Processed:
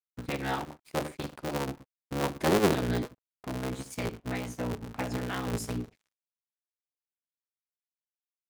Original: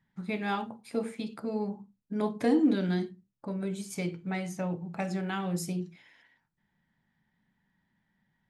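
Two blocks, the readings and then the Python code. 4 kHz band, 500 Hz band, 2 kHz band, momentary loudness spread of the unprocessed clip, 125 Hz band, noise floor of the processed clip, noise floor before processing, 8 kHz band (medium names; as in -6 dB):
+5.0 dB, +2.0 dB, +2.5 dB, 12 LU, +1.5 dB, under -85 dBFS, -78 dBFS, +3.5 dB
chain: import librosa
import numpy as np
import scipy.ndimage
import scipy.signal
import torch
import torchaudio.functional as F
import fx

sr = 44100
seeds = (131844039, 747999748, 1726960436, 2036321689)

y = fx.cycle_switch(x, sr, every=3, mode='inverted')
y = np.sign(y) * np.maximum(np.abs(y) - 10.0 ** (-51.5 / 20.0), 0.0)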